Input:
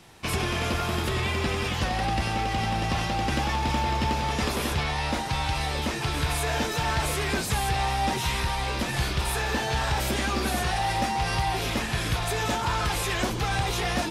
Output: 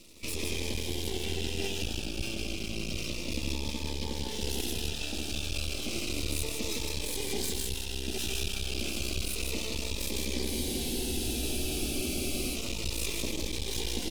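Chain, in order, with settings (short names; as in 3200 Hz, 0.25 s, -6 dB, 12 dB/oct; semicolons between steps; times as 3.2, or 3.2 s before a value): FFT band-reject 900–2300 Hz; limiter -24 dBFS, peak gain reduction 8.5 dB; fixed phaser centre 320 Hz, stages 4; echo 0.157 s -4 dB; half-wave rectifier; spectral freeze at 10.51, 2.05 s; cascading phaser falling 0.31 Hz; gain +5.5 dB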